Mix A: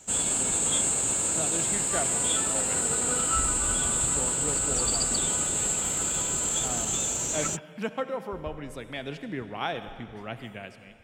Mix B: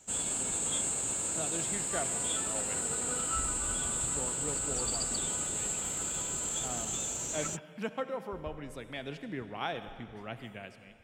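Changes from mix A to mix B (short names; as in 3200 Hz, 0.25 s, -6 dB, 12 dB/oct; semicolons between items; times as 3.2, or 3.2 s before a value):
speech -4.5 dB; background -7.0 dB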